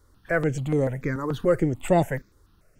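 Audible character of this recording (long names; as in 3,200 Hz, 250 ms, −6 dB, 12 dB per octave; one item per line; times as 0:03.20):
notches that jump at a steady rate 6.9 Hz 680–5,200 Hz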